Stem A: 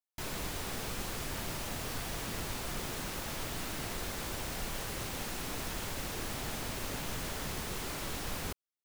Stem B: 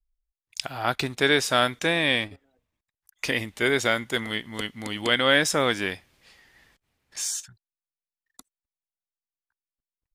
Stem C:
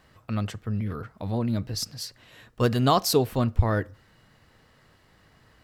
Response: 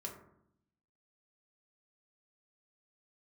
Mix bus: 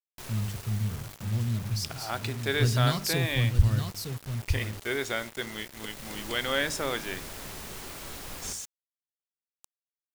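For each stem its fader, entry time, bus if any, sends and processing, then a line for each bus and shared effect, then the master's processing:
-4.5 dB, 0.00 s, send -12 dB, no echo send, auto duck -18 dB, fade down 1.85 s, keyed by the third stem
-9.5 dB, 1.25 s, send -10.5 dB, no echo send, dry
+1.5 dB, 0.00 s, send -21 dB, echo send -7 dB, EQ curve 150 Hz 0 dB, 260 Hz -13 dB, 730 Hz -21 dB, 4900 Hz -6 dB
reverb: on, RT60 0.75 s, pre-delay 3 ms
echo: echo 0.913 s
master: notches 50/100/150/200/250/300 Hz; bit-crush 7-bit

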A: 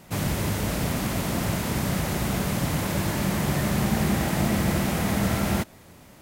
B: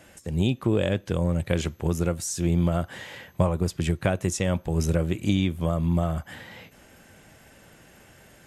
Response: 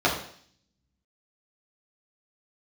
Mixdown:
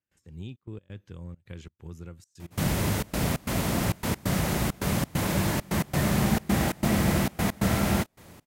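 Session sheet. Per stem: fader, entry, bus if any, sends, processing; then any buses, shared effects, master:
0.0 dB, 2.40 s, no send, dry
-17.5 dB, 0.00 s, no send, fifteen-band EQ 100 Hz +5 dB, 630 Hz -9 dB, 10000 Hz -8 dB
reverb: off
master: step gate ".xxxx.x.xxxx.xx" 134 bpm -24 dB

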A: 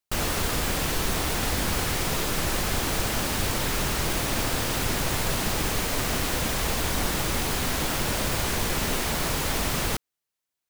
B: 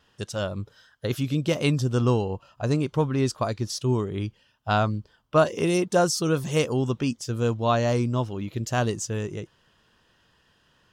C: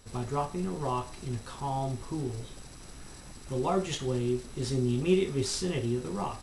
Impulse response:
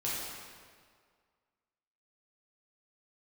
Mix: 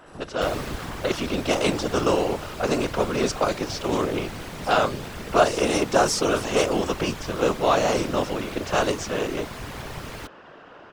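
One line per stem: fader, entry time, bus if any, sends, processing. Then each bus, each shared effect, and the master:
0.0 dB, 0.30 s, no send, high shelf 5500 Hz -11.5 dB; auto duck -11 dB, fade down 0.95 s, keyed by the second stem
-2.5 dB, 0.00 s, no send, per-bin compression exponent 0.6; HPF 290 Hz 12 dB/oct; low-pass opened by the level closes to 1700 Hz, open at -17 dBFS
-10.5 dB, 0.00 s, no send, negative-ratio compressor -32 dBFS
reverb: off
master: AGC gain up to 3 dB; whisperiser

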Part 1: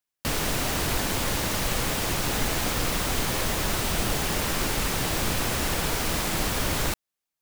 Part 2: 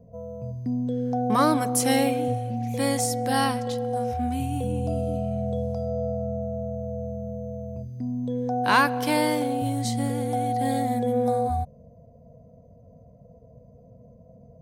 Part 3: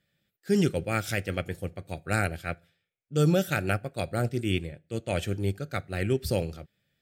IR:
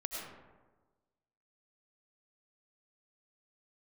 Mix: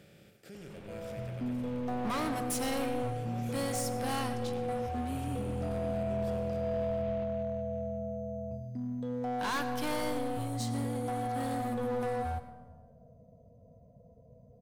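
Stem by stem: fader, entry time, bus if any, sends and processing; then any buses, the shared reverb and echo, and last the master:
-12.0 dB, 0.30 s, bus A, no send, echo send -12.5 dB, LPF 3000 Hz 24 dB/oct
-3.5 dB, 0.75 s, no bus, send -8.5 dB, no echo send, hard clip -23.5 dBFS, distortion -9 dB
-13.5 dB, 0.00 s, bus A, send -13 dB, no echo send, per-bin compression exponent 0.4
bus A: 0.0 dB, bell 1500 Hz -6.5 dB; limiter -39 dBFS, peak gain reduction 17.5 dB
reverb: on, RT60 1.3 s, pre-delay 60 ms
echo: feedback echo 0.187 s, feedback 57%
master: resonator 110 Hz, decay 1.3 s, harmonics all, mix 50%

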